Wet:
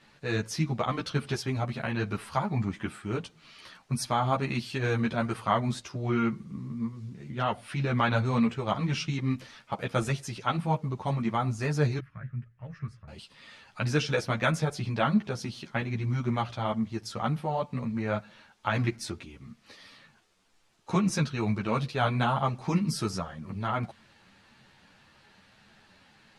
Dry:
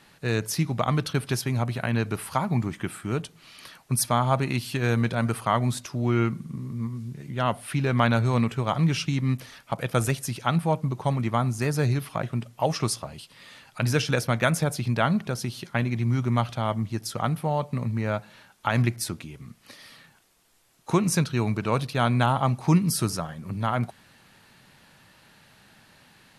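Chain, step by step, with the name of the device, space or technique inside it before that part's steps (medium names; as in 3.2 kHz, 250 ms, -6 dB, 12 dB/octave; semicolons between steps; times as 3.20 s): 11.99–13.08 s: FFT filter 130 Hz 0 dB, 290 Hz -21 dB, 530 Hz -20 dB, 810 Hz -27 dB, 1.7 kHz -5 dB, 3.5 kHz -29 dB; string-machine ensemble chorus (three-phase chorus; low-pass 6.4 kHz 12 dB/octave)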